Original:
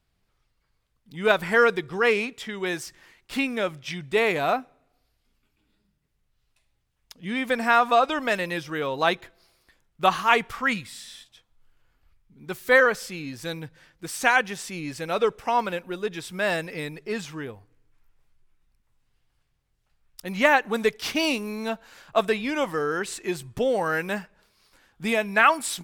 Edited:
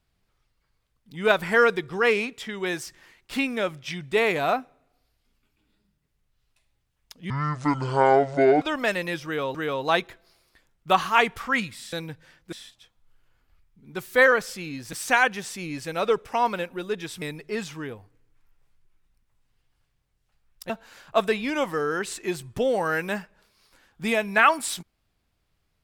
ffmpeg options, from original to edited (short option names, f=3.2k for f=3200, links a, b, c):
-filter_complex "[0:a]asplit=9[a][b][c][d][e][f][g][h][i];[a]atrim=end=7.304[j];[b]atrim=start=7.3:end=8.05,asetpts=PTS-STARTPTS,asetrate=25137,aresample=44100,atrim=end_sample=58026,asetpts=PTS-STARTPTS[k];[c]atrim=start=8.046:end=8.982[l];[d]atrim=start=8.678:end=11.062[m];[e]atrim=start=13.458:end=14.062[n];[f]atrim=start=11.058:end=13.462[o];[g]atrim=start=14.058:end=16.352[p];[h]atrim=start=16.788:end=20.272[q];[i]atrim=start=21.698[r];[j][k]acrossfade=d=0.004:c1=hsin:c2=hsin[s];[s][l]acrossfade=d=0.004:c1=hsin:c2=hsin[t];[t][m]acrossfade=d=0.004:c1=hsin:c2=hsin[u];[u][n]acrossfade=d=0.004:c1=hsin:c2=hsin[v];[v][o]acrossfade=d=0.004:c1=hsin:c2=hsin[w];[w][p]acrossfade=d=0.004:c1=hsin:c2=hsin[x];[x][q]acrossfade=d=0.004:c1=hsin:c2=hsin[y];[y][r]acrossfade=d=0.004:c1=hsin:c2=hsin"